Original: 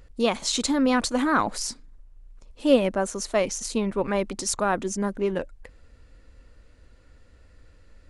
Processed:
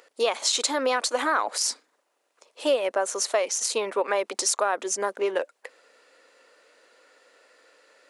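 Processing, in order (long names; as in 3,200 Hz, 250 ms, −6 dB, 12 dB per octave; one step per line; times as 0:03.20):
high-pass filter 440 Hz 24 dB per octave
downward compressor 4 to 1, threshold −28 dBFS, peak gain reduction 11 dB
level +7 dB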